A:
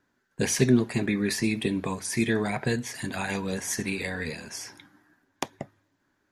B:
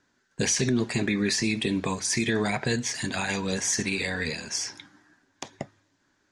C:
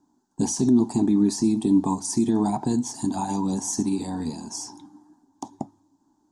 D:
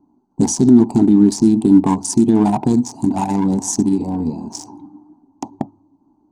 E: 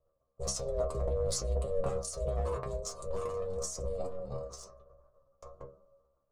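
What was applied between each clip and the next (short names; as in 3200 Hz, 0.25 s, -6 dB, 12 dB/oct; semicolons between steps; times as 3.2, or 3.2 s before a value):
LPF 7400 Hz 24 dB/oct; high shelf 3700 Hz +11 dB; limiter -17 dBFS, peak gain reduction 11.5 dB; gain +1.5 dB
EQ curve 130 Hz 0 dB, 300 Hz +13 dB, 510 Hz -10 dB, 870 Hz +12 dB, 1400 Hz -13 dB, 2100 Hz -26 dB, 3300 Hz -13 dB, 8300 Hz +3 dB; gain -1.5 dB
Wiener smoothing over 25 samples; gain +9 dB
transient shaper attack -5 dB, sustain +12 dB; ring modulator 280 Hz; metallic resonator 65 Hz, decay 0.34 s, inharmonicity 0.002; gain -9 dB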